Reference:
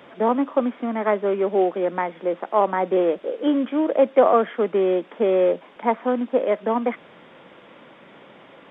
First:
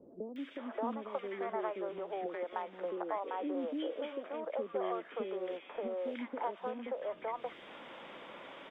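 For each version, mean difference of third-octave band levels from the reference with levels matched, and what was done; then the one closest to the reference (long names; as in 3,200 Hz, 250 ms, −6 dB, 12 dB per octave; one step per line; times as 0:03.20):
6.5 dB: parametric band 140 Hz −12 dB 1.8 octaves
downward compressor 12 to 1, threshold −33 dBFS, peak gain reduction 21.5 dB
three-band delay without the direct sound lows, highs, mids 360/580 ms, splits 430/1,700 Hz
level +1 dB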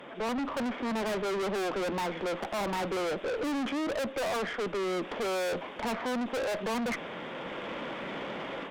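14.0 dB: high-pass filter 120 Hz 12 dB per octave
automatic gain control gain up to 11 dB
tube saturation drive 31 dB, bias 0.3
level +1 dB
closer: first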